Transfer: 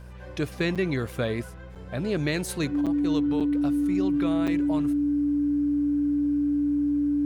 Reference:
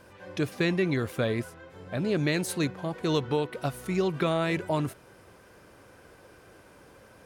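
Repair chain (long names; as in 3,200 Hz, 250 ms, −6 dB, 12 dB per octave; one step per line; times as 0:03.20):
hum removal 61.7 Hz, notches 3
notch filter 290 Hz, Q 30
repair the gap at 0:00.75/0:01.75/0:02.86/0:03.40/0:04.47, 6.8 ms
level 0 dB, from 0:02.81 +6 dB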